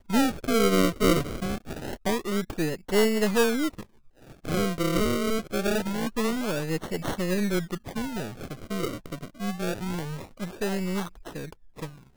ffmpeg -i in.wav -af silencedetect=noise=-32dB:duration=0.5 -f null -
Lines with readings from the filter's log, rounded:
silence_start: 3.81
silence_end: 4.45 | silence_duration: 0.64